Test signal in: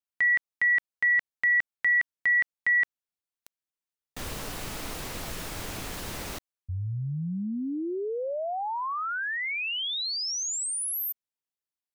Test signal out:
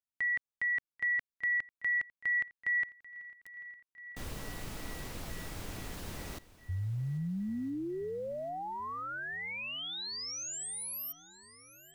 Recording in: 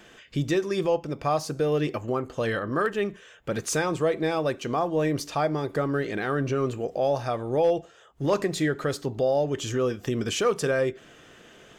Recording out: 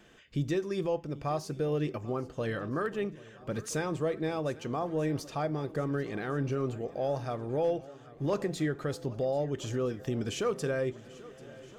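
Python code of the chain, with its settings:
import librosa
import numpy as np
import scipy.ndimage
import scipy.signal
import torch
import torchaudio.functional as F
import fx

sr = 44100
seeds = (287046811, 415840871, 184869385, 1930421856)

y = fx.low_shelf(x, sr, hz=340.0, db=6.5)
y = fx.echo_swing(y, sr, ms=1316, ratio=1.5, feedback_pct=51, wet_db=-20)
y = y * 10.0 ** (-9.0 / 20.0)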